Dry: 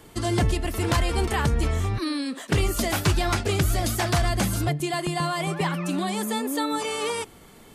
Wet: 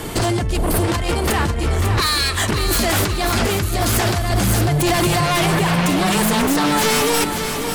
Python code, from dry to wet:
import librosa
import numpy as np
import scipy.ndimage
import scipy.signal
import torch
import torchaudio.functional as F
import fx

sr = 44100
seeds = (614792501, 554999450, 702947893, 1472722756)

y = fx.spec_box(x, sr, start_s=0.57, length_s=0.27, low_hz=1300.0, high_hz=8200.0, gain_db=-16)
y = fx.highpass(y, sr, hz=910.0, slope=24, at=(2.0, 2.42))
y = fx.over_compress(y, sr, threshold_db=-30.0, ratio=-1.0)
y = fx.fold_sine(y, sr, drive_db=12, ceiling_db=-14.5)
y = fx.echo_feedback(y, sr, ms=546, feedback_pct=49, wet_db=-7.5)
y = fx.doppler_dist(y, sr, depth_ms=0.28, at=(6.3, 6.72))